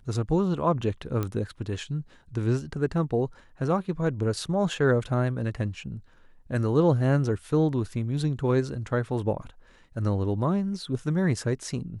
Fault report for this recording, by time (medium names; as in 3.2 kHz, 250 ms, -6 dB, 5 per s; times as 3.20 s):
1.23 s: pop -16 dBFS